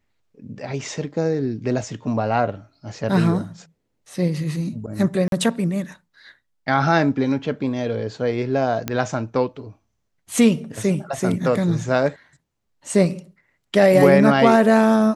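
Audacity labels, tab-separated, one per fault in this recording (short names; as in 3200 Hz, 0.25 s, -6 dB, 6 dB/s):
5.280000	5.320000	gap 42 ms
8.880000	8.880000	pop -8 dBFS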